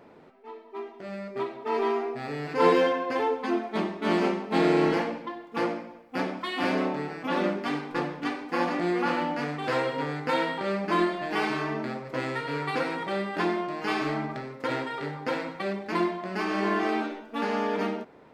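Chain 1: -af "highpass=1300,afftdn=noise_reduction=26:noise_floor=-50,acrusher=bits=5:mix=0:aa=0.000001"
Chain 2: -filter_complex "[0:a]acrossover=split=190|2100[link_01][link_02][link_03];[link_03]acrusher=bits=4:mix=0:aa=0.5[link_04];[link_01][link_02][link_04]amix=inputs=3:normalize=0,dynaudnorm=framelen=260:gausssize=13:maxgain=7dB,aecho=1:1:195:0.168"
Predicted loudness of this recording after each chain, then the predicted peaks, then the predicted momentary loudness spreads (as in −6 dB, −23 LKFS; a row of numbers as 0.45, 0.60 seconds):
−34.5, −22.5 LKFS; −18.0, −3.5 dBFS; 9, 11 LU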